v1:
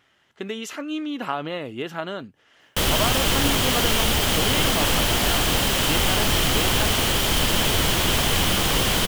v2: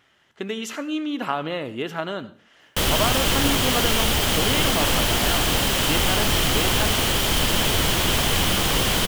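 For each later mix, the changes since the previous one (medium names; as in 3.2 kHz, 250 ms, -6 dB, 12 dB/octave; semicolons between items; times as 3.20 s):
reverb: on, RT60 0.45 s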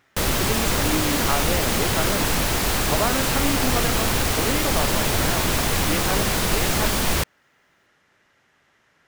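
background: entry -2.60 s; master: add peaking EQ 3.1 kHz -10 dB 0.3 oct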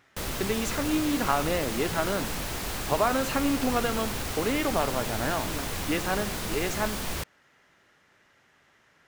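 background -11.0 dB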